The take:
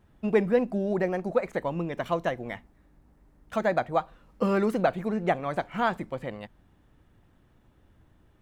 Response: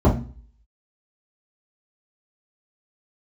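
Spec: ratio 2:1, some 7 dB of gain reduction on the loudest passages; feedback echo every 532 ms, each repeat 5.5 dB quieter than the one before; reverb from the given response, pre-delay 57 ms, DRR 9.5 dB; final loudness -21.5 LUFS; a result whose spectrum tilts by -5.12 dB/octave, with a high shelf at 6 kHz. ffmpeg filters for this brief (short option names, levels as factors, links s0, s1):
-filter_complex "[0:a]highshelf=f=6000:g=6.5,acompressor=threshold=0.0282:ratio=2,aecho=1:1:532|1064|1596|2128|2660|3192|3724:0.531|0.281|0.149|0.079|0.0419|0.0222|0.0118,asplit=2[s0][s1];[1:a]atrim=start_sample=2205,adelay=57[s2];[s1][s2]afir=irnorm=-1:irlink=0,volume=0.0355[s3];[s0][s3]amix=inputs=2:normalize=0,volume=2.66"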